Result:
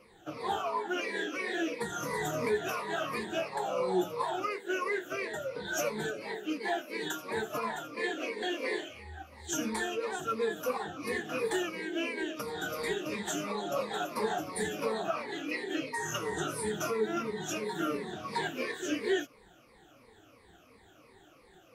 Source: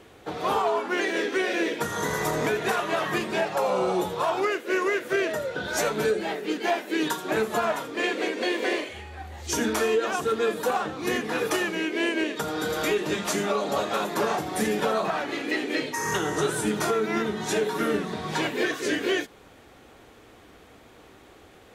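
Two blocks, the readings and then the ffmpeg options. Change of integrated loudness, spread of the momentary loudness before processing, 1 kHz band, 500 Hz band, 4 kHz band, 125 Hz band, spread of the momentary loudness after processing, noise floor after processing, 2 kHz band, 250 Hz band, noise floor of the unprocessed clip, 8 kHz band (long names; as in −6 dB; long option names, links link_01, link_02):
−7.5 dB, 3 LU, −7.5 dB, −8.0 dB, −7.5 dB, −8.0 dB, 5 LU, −60 dBFS, −7.5 dB, −7.5 dB, −52 dBFS, −6.5 dB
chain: -af "afftfilt=real='re*pow(10,17/40*sin(2*PI*(0.92*log(max(b,1)*sr/1024/100)/log(2)-(-2.9)*(pts-256)/sr)))':imag='im*pow(10,17/40*sin(2*PI*(0.92*log(max(b,1)*sr/1024/100)/log(2)-(-2.9)*(pts-256)/sr)))':win_size=1024:overlap=0.75,flanger=delay=5.6:depth=5.8:regen=-34:speed=0.51:shape=sinusoidal,volume=-7dB"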